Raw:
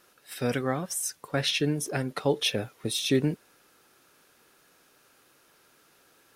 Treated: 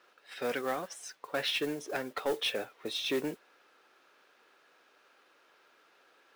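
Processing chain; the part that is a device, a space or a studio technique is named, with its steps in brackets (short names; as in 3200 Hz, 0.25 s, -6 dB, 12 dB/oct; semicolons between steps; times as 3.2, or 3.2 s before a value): carbon microphone (BPF 420–3500 Hz; soft clip -24 dBFS, distortion -14 dB; modulation noise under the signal 19 dB)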